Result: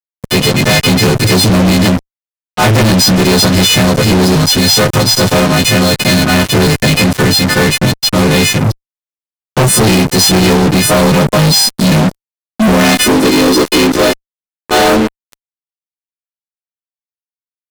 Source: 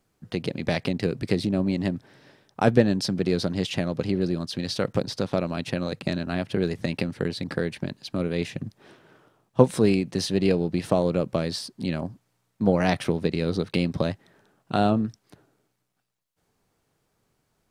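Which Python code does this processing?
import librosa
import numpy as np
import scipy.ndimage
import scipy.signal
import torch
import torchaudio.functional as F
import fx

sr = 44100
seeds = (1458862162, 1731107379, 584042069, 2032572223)

y = fx.freq_snap(x, sr, grid_st=3)
y = fx.filter_sweep_highpass(y, sr, from_hz=110.0, to_hz=380.0, start_s=10.59, end_s=14.39, q=3.7)
y = fx.fuzz(y, sr, gain_db=38.0, gate_db=-35.0)
y = F.gain(torch.from_numpy(y), 6.5).numpy()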